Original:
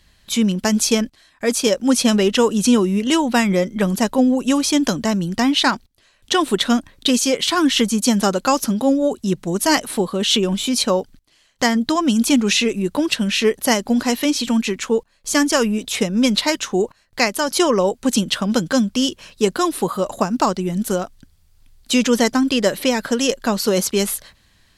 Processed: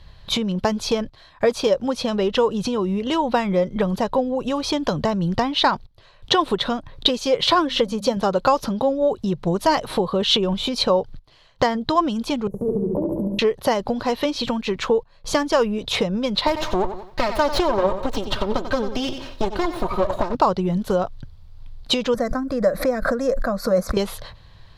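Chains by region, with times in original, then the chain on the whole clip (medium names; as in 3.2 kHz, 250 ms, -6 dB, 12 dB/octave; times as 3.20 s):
7.43–8.17 s: peaking EQ 540 Hz +11 dB 0.31 oct + hum notches 50/100/150/200/250 Hz
12.47–13.39 s: inverse Chebyshev band-stop 2.1–4.7 kHz, stop band 80 dB + compression 4:1, threshold -24 dBFS + flutter echo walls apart 12 m, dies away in 1.3 s
16.47–20.35 s: comb filter that takes the minimum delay 3.2 ms + bit-crushed delay 91 ms, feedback 35%, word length 8-bit, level -12.5 dB
22.14–23.97 s: peaking EQ 3.9 kHz -8 dB 1.3 oct + static phaser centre 600 Hz, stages 8 + swell ahead of each attack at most 110 dB/s
whole clip: tilt EQ -2.5 dB/octave; compression 10:1, threshold -19 dBFS; ten-band graphic EQ 125 Hz +8 dB, 250 Hz -8 dB, 500 Hz +7 dB, 1 kHz +9 dB, 4 kHz +10 dB, 8 kHz -6 dB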